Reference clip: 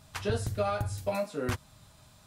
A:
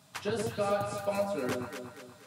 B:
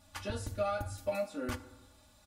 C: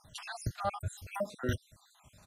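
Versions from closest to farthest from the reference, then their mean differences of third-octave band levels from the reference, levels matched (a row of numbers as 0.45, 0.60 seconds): B, A, C; 3.0, 6.0, 9.0 decibels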